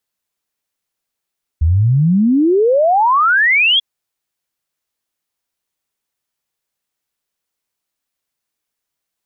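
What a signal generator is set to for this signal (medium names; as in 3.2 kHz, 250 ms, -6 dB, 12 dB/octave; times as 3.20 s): log sweep 74 Hz -> 3.4 kHz 2.19 s -9 dBFS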